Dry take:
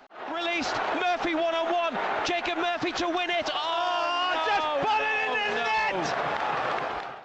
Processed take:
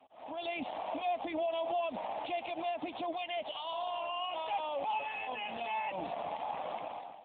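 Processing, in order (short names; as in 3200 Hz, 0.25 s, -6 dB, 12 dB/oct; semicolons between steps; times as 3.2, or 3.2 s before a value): 3.11–5.34 bell 410 Hz -> 130 Hz -6.5 dB 1.3 oct; fixed phaser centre 400 Hz, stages 6; gain -5.5 dB; AMR-NB 7.4 kbps 8000 Hz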